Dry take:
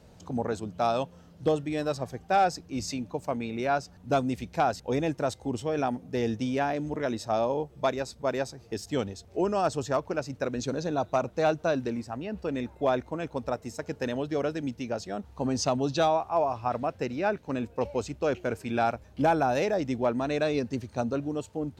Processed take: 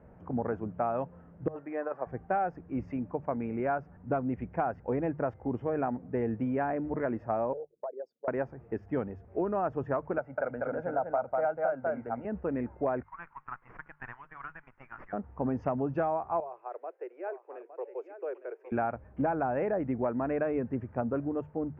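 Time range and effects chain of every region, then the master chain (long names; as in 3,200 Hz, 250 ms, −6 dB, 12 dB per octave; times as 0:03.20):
0:01.48–0:02.07: compressor whose output falls as the input rises −28 dBFS, ratio −0.5 + band-pass filter 520–2,200 Hz
0:07.53–0:08.28: spectral envelope exaggerated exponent 3 + high-pass filter 510 Hz 24 dB per octave + downward compressor 5 to 1, threshold −34 dBFS
0:10.18–0:12.25: three-way crossover with the lows and the highs turned down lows −13 dB, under 310 Hz, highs −14 dB, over 2,400 Hz + comb filter 1.4 ms, depth 62% + single-tap delay 195 ms −4 dB
0:13.03–0:15.13: Butterworth high-pass 1,000 Hz 48 dB per octave + windowed peak hold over 5 samples
0:16.40–0:18.72: Butterworth high-pass 360 Hz 72 dB per octave + parametric band 1,200 Hz −14 dB 3 octaves + single-tap delay 861 ms −11 dB
whole clip: inverse Chebyshev low-pass filter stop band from 3,700 Hz, stop band 40 dB; mains-hum notches 50/100/150 Hz; downward compressor, threshold −26 dBFS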